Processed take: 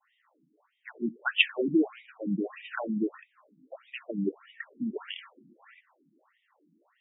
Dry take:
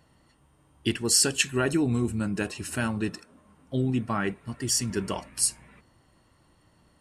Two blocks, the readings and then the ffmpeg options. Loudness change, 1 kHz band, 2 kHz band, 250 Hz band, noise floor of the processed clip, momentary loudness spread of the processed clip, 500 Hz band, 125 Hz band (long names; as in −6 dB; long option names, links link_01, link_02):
−4.0 dB, −7.0 dB, +0.5 dB, −2.5 dB, −74 dBFS, 20 LU, −3.5 dB, −13.5 dB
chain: -af "adynamicequalizer=threshold=0.00708:dfrequency=1400:dqfactor=1:tfrequency=1400:tqfactor=1:attack=5:release=100:ratio=0.375:range=3:mode=boostabove:tftype=bell,afftfilt=real='re*between(b*sr/1024,230*pow(2700/230,0.5+0.5*sin(2*PI*1.6*pts/sr))/1.41,230*pow(2700/230,0.5+0.5*sin(2*PI*1.6*pts/sr))*1.41)':imag='im*between(b*sr/1024,230*pow(2700/230,0.5+0.5*sin(2*PI*1.6*pts/sr))/1.41,230*pow(2700/230,0.5+0.5*sin(2*PI*1.6*pts/sr))*1.41)':win_size=1024:overlap=0.75,volume=2.5dB"